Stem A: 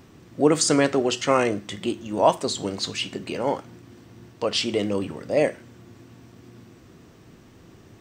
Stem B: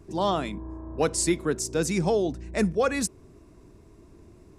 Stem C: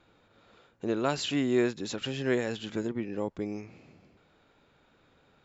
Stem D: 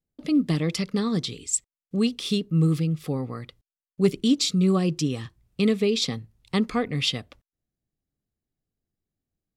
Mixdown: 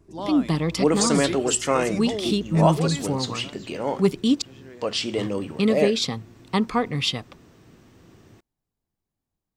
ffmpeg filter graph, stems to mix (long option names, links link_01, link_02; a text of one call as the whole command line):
ffmpeg -i stem1.wav -i stem2.wav -i stem3.wav -i stem4.wav -filter_complex "[0:a]adelay=400,volume=-2dB[link_01];[1:a]volume=-6.5dB[link_02];[2:a]acompressor=threshold=-40dB:ratio=2,adelay=2400,volume=-9dB[link_03];[3:a]equalizer=frequency=940:width_type=o:width=0.6:gain=10.5,volume=0.5dB,asplit=3[link_04][link_05][link_06];[link_04]atrim=end=4.42,asetpts=PTS-STARTPTS,afade=type=out:start_time=4.416:duration=0.004:curve=hsin[link_07];[link_05]atrim=start=4.42:end=5.18,asetpts=PTS-STARTPTS,volume=0[link_08];[link_06]atrim=start=5.18,asetpts=PTS-STARTPTS,afade=type=in:duration=0.004:curve=hsin[link_09];[link_07][link_08][link_09]concat=n=3:v=0:a=1,asplit=2[link_10][link_11];[link_11]apad=whole_len=345813[link_12];[link_03][link_12]sidechaincompress=threshold=-31dB:ratio=8:attack=47:release=138[link_13];[link_01][link_02][link_13][link_10]amix=inputs=4:normalize=0" out.wav